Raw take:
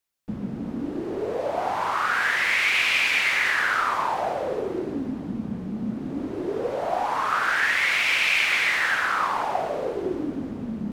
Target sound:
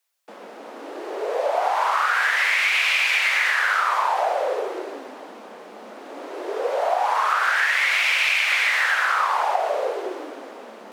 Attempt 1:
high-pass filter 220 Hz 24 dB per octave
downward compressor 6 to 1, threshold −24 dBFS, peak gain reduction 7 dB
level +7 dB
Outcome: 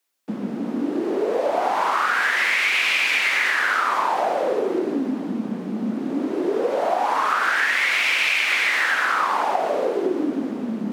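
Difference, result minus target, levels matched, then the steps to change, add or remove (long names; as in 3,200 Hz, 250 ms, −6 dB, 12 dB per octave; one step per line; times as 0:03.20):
250 Hz band +18.0 dB
change: high-pass filter 510 Hz 24 dB per octave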